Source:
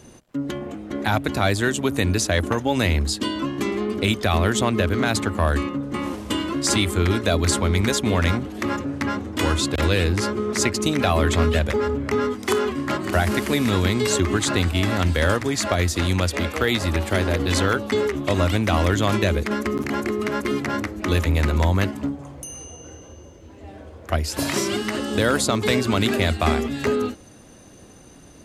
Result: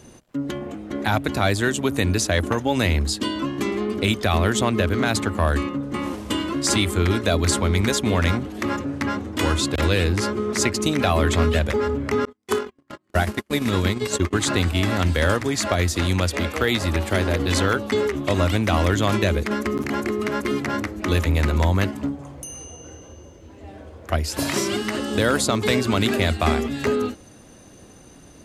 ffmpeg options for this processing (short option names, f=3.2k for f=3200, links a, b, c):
-filter_complex "[0:a]asettb=1/sr,asplit=3[a][b][c];[a]atrim=end=12.254[d];[b]atrim=start=12.25:end=14.33,asetpts=PTS-STARTPTS,afade=t=in:d=0.004:c=qsin,afade=t=out:st=2.076:d=0.004:c=qsin,agate=range=-44dB:threshold=-21dB:ratio=16:release=100:detection=peak[e];[c]atrim=start=14.326[f];[d][e]acrossfade=d=0.004:c1=hsin:c2=qsin[g];[g][f]acrossfade=d=0.004:c1=qsin:c2=hsin"